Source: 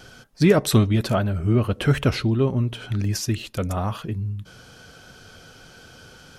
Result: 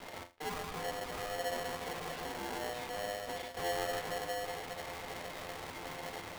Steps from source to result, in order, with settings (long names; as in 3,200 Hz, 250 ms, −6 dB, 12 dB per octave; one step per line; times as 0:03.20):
reversed playback
downward compressor 4 to 1, threshold −29 dBFS, peak gain reduction 15 dB
reversed playback
brickwall limiter −27.5 dBFS, peak gain reduction 8.5 dB
leveller curve on the samples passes 5
on a send: delay that swaps between a low-pass and a high-pass 136 ms, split 1,100 Hz, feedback 58%, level −4.5 dB
on the sum: bit reduction 5 bits
high-frequency loss of the air 400 metres
tuned comb filter 89 Hz, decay 0.28 s, harmonics all, mix 90%
ring modulator with a square carrier 610 Hz
level −3.5 dB